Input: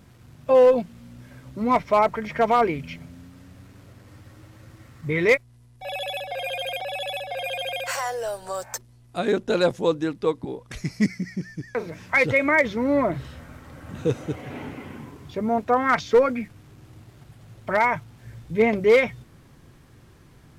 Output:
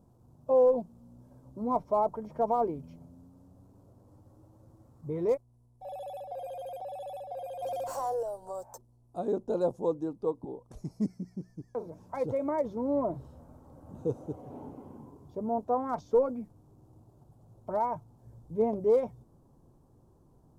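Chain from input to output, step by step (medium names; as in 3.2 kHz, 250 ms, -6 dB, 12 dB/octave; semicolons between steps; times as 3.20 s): peaking EQ 100 Hz -4 dB 2.2 oct; 7.62–8.23 s: waveshaping leveller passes 2; FFT filter 930 Hz 0 dB, 2 kHz -30 dB, 6.3 kHz -12 dB, 10 kHz -9 dB; trim -7 dB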